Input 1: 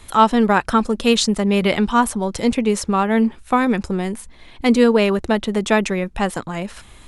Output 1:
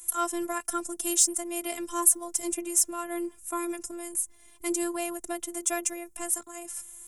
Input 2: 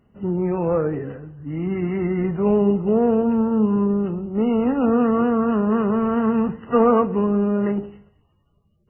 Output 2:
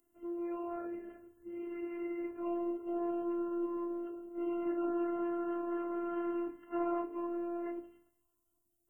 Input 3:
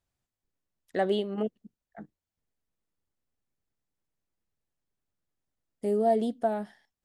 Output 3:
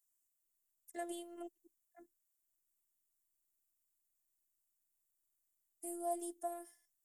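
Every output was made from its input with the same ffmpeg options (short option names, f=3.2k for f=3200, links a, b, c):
-af "aexciter=amount=12.5:drive=8:freq=6.2k,afreqshift=45,afftfilt=real='hypot(re,im)*cos(PI*b)':imag='0':win_size=512:overlap=0.75,volume=-12.5dB"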